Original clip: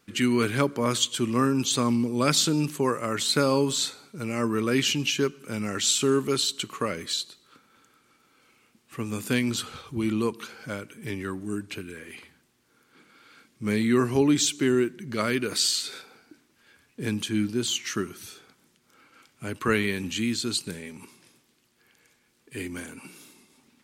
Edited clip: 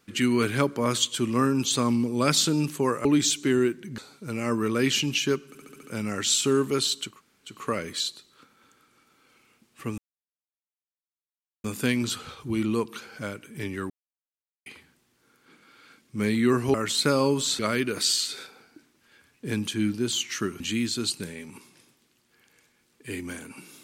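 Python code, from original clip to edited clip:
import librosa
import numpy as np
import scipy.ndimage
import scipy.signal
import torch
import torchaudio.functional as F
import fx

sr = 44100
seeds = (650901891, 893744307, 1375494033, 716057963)

y = fx.edit(x, sr, fx.swap(start_s=3.05, length_s=0.85, other_s=14.21, other_length_s=0.93),
    fx.stutter(start_s=5.4, slice_s=0.07, count=6),
    fx.insert_room_tone(at_s=6.67, length_s=0.44, crossfade_s=0.24),
    fx.insert_silence(at_s=9.11, length_s=1.66),
    fx.silence(start_s=11.37, length_s=0.76),
    fx.cut(start_s=18.15, length_s=1.92), tone=tone)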